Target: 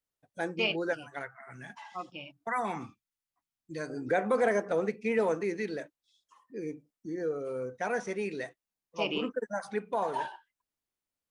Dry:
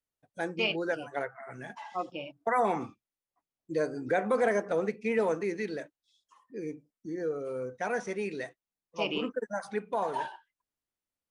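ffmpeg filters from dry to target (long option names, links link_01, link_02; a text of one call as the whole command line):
ffmpeg -i in.wav -filter_complex "[0:a]asettb=1/sr,asplit=3[link_01][link_02][link_03];[link_01]atrim=end=0.934[link_04];[link_02]atrim=start=0.93:end=3.9,asetpts=PTS-STARTPTS,afade=type=in:duration=0.004:curve=qsin,afade=type=out:start_time=2.966:duration=0.004:curve=qsin,equalizer=frequency=490:width=0.96:gain=-11[link_05];[link_03]atrim=start=3.896[link_06];[link_04][link_05]acrossfade=duration=0.004:curve1=hsin:curve2=qsin[link_07];[link_07][link_06]acrossfade=duration=0.004:curve1=qsin:curve2=hsin" out.wav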